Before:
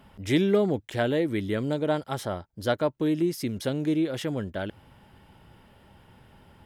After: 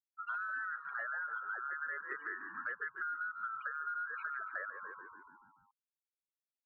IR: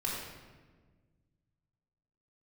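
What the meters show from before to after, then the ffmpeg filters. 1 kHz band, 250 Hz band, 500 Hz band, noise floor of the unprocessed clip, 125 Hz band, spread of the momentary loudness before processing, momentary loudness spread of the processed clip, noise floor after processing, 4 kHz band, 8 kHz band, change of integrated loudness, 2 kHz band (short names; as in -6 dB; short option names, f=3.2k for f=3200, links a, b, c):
-3.5 dB, -39.0 dB, -30.5 dB, -58 dBFS, under -40 dB, 9 LU, 6 LU, under -85 dBFS, under -35 dB, under -35 dB, -12.5 dB, +1.5 dB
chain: -filter_complex "[0:a]afftfilt=real='real(if(lt(b,960),b+48*(1-2*mod(floor(b/48),2)),b),0)':imag='imag(if(lt(b,960),b+48*(1-2*mod(floor(b/48),2)),b),0)':win_size=2048:overlap=0.75,asoftclip=type=hard:threshold=-22.5dB,afftfilt=real='re*gte(hypot(re,im),0.0398)':imag='im*gte(hypot(re,im),0.0398)':win_size=1024:overlap=0.75,highpass=f=260:t=q:w=0.5412,highpass=f=260:t=q:w=1.307,lowpass=f=2.2k:t=q:w=0.5176,lowpass=f=2.2k:t=q:w=0.7071,lowpass=f=2.2k:t=q:w=1.932,afreqshift=78,asplit=8[a][b][c][d][e][f][g][h];[b]adelay=144,afreqshift=-57,volume=-13dB[i];[c]adelay=288,afreqshift=-114,volume=-17.3dB[j];[d]adelay=432,afreqshift=-171,volume=-21.6dB[k];[e]adelay=576,afreqshift=-228,volume=-25.9dB[l];[f]adelay=720,afreqshift=-285,volume=-30.2dB[m];[g]adelay=864,afreqshift=-342,volume=-34.5dB[n];[h]adelay=1008,afreqshift=-399,volume=-38.8dB[o];[a][i][j][k][l][m][n][o]amix=inputs=8:normalize=0,alimiter=limit=-22dB:level=0:latency=1:release=269,bandreject=f=1.2k:w=7.1,acompressor=threshold=-39dB:ratio=6,volume=1dB"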